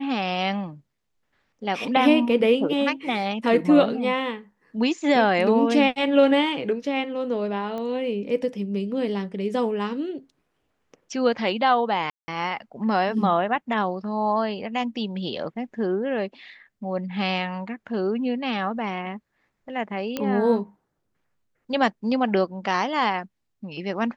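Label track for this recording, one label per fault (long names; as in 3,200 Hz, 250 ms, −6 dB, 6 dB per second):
7.780000	7.780000	click −21 dBFS
12.100000	12.280000	drop-out 180 ms
20.170000	20.170000	click −12 dBFS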